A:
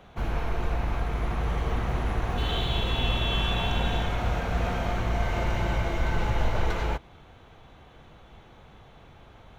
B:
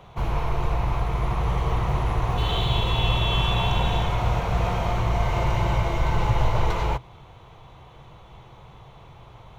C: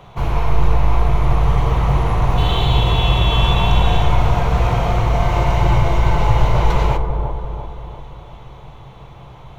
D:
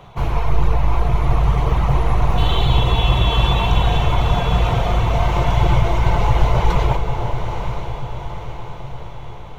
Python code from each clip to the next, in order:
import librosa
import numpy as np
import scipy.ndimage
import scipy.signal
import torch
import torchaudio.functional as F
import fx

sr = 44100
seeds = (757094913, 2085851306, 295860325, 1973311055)

y1 = fx.graphic_eq_31(x, sr, hz=(125, 250, 1000, 1600), db=(9, -10, 7, -7))
y1 = F.gain(torch.from_numpy(y1), 3.0).numpy()
y2 = fx.echo_wet_lowpass(y1, sr, ms=342, feedback_pct=51, hz=920.0, wet_db=-5.0)
y2 = fx.room_shoebox(y2, sr, seeds[0], volume_m3=290.0, walls='mixed', distance_m=0.33)
y2 = F.gain(torch.from_numpy(y2), 5.0).numpy()
y3 = fx.dereverb_blind(y2, sr, rt60_s=0.62)
y3 = fx.echo_diffused(y3, sr, ms=916, feedback_pct=51, wet_db=-8.0)